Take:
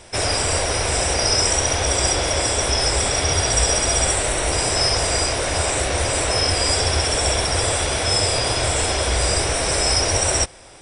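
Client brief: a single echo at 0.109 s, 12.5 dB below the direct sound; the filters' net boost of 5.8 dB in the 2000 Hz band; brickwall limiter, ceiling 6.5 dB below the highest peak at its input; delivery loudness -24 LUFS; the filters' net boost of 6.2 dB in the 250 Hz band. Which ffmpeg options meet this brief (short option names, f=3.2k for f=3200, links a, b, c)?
-af "equalizer=f=250:t=o:g=8.5,equalizer=f=2k:t=o:g=7,alimiter=limit=-11dB:level=0:latency=1,aecho=1:1:109:0.237,volume=-5dB"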